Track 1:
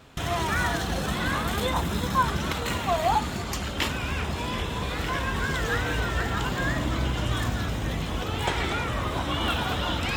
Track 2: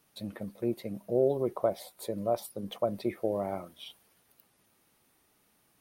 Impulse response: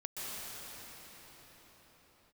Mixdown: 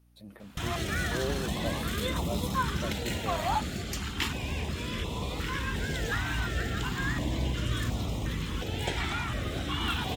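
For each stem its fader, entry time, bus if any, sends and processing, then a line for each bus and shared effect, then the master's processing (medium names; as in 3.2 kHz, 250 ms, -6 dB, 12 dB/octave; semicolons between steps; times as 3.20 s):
-3.0 dB, 0.40 s, no send, step-sequenced notch 2.8 Hz 500–1600 Hz
-8.0 dB, 0.00 s, no send, transient shaper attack -3 dB, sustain +5 dB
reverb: none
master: hum 60 Hz, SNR 31 dB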